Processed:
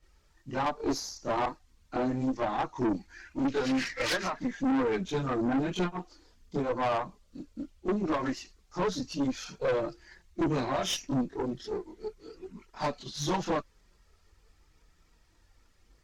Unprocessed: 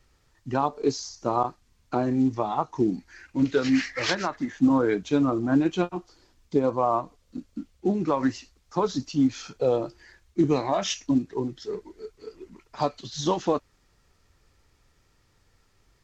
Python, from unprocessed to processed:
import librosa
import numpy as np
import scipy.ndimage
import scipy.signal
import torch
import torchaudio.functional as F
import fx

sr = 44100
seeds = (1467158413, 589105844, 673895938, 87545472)

y = fx.chorus_voices(x, sr, voices=6, hz=0.36, base_ms=25, depth_ms=3.4, mix_pct=70)
y = fx.tube_stage(y, sr, drive_db=27.0, bias=0.55)
y = y * librosa.db_to_amplitude(3.0)